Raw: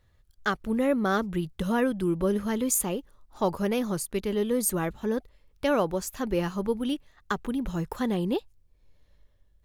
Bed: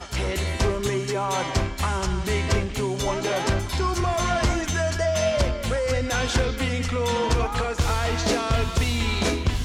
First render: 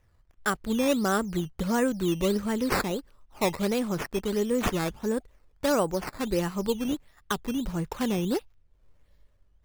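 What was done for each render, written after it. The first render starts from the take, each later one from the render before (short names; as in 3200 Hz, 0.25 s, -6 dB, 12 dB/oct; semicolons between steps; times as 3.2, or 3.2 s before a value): decimation with a swept rate 10×, swing 100% 1.5 Hz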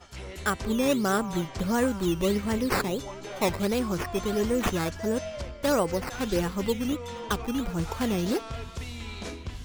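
add bed -14 dB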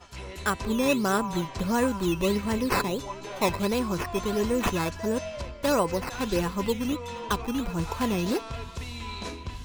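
small resonant body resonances 1000/2600/4000 Hz, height 13 dB, ringing for 95 ms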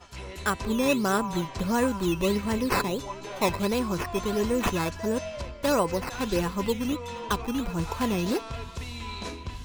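nothing audible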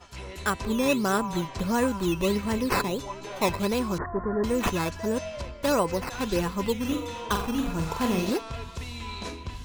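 3.98–4.44 steep low-pass 1900 Hz 96 dB/oct; 6.79–8.3 flutter echo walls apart 7.5 m, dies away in 0.46 s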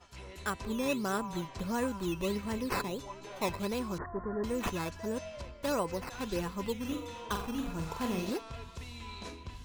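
gain -8 dB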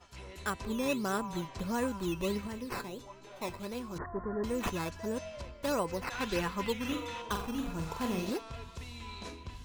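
2.47–3.96 resonator 120 Hz, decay 0.24 s; 6.04–7.22 bell 1900 Hz +8 dB 2.3 oct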